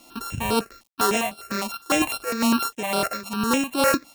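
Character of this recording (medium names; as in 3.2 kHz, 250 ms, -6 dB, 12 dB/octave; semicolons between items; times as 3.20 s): a buzz of ramps at a fixed pitch in blocks of 32 samples; tremolo triangle 2.1 Hz, depth 75%; a quantiser's noise floor 10-bit, dither none; notches that jump at a steady rate 9.9 Hz 430–6600 Hz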